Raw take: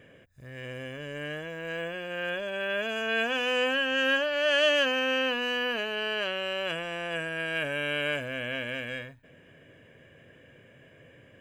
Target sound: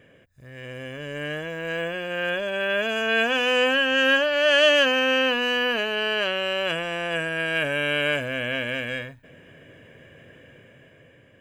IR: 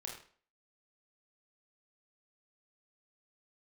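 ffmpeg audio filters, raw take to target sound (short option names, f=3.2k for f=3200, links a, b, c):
-af "dynaudnorm=f=170:g=11:m=6dB"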